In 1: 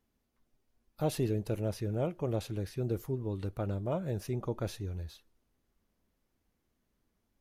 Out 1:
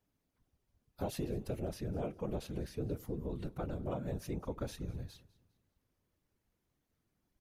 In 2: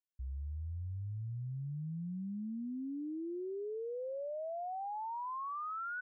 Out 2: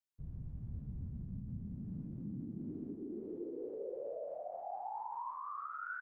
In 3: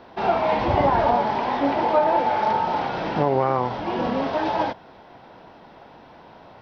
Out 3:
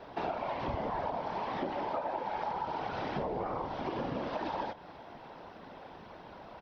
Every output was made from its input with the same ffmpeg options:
ffmpeg -i in.wav -af "afftfilt=real='hypot(re,im)*cos(2*PI*random(0))':imag='hypot(re,im)*sin(2*PI*random(1))':win_size=512:overlap=0.75,acompressor=threshold=-36dB:ratio=6,aecho=1:1:202|404|606:0.0794|0.0286|0.0103,volume=3dB" out.wav

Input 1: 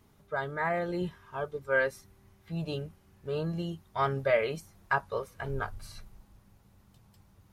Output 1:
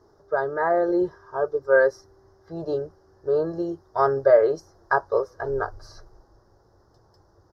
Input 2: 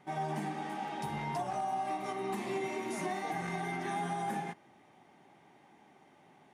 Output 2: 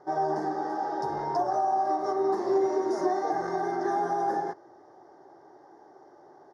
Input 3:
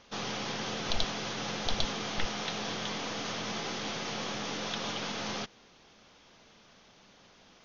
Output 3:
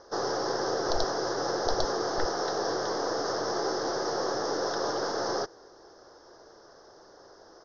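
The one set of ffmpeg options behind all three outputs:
ffmpeg -i in.wav -af "firequalizer=gain_entry='entry(110,0);entry(210,-9);entry(340,13);entry(560,11);entry(930,7);entry(1700,4);entry(2400,-24);entry(5200,9);entry(8000,-14)':delay=0.05:min_phase=1" out.wav

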